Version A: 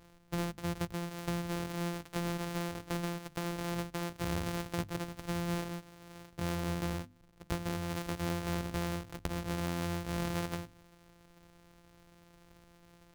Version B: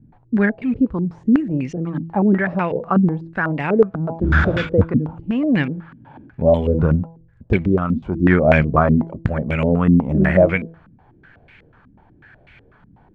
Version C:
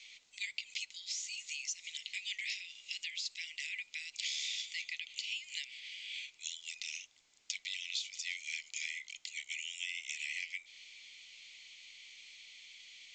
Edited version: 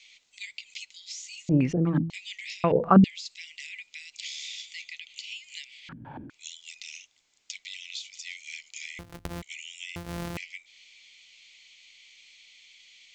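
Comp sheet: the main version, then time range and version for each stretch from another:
C
1.49–2.1 from B
2.64–3.04 from B
5.89–6.3 from B
8.99–9.42 from A
9.96–10.37 from A

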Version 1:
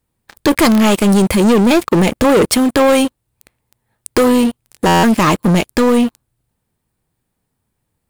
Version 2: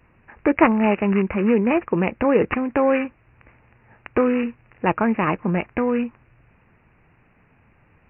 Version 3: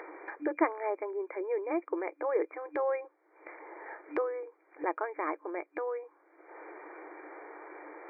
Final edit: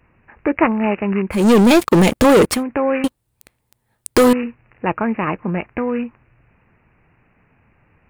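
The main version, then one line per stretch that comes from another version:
2
1.42–2.52 from 1, crossfade 0.24 s
3.04–4.33 from 1
not used: 3

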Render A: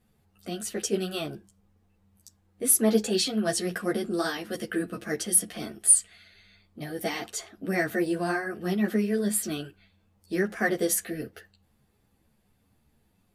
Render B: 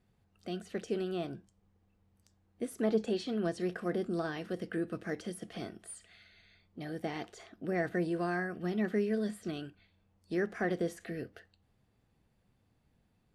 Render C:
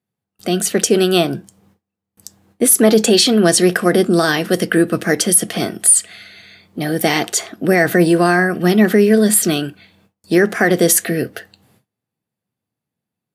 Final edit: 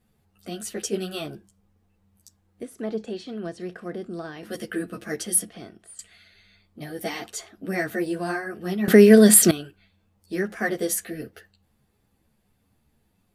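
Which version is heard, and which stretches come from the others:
A
2.63–4.43 from B
5.5–5.99 from B
8.88–9.51 from C

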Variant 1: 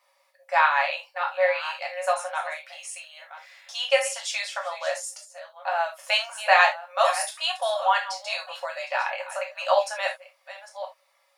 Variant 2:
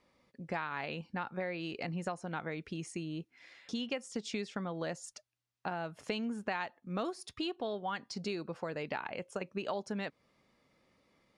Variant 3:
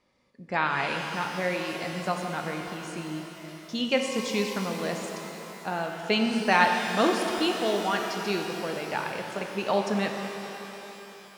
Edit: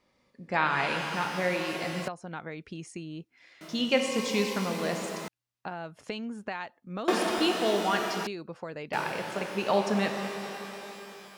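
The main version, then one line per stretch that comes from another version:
3
2.08–3.61 from 2
5.28–7.08 from 2
8.27–8.93 from 2
not used: 1

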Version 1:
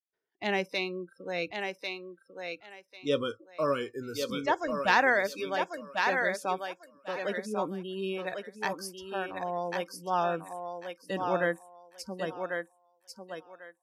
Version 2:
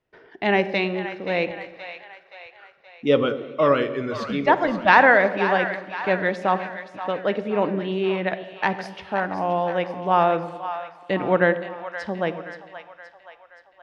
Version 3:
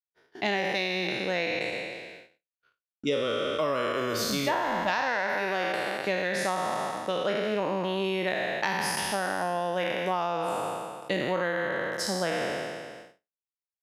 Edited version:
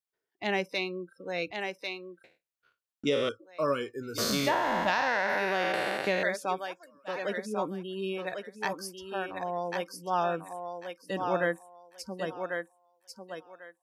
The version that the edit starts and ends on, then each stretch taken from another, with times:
1
2.24–3.29 from 3
4.18–6.23 from 3
not used: 2

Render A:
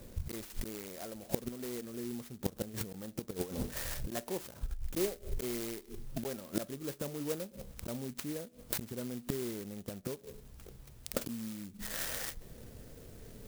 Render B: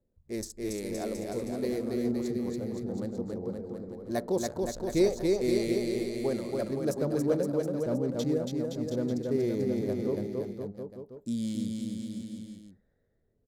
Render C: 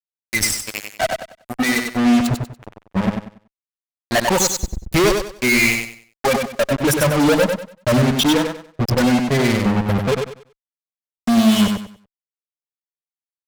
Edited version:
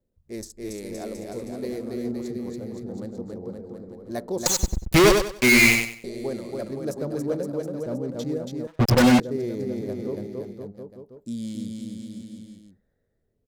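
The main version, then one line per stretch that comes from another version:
B
4.46–6.04 from C
8.67–9.2 from C
not used: A

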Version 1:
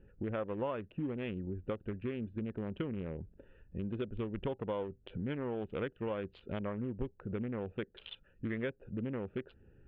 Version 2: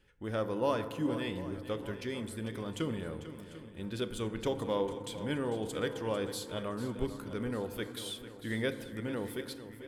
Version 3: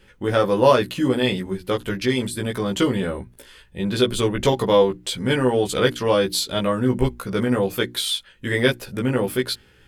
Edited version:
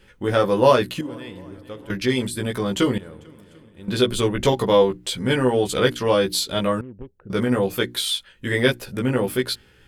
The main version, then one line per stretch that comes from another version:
3
1.01–1.9 from 2
2.98–3.88 from 2
6.81–7.3 from 1

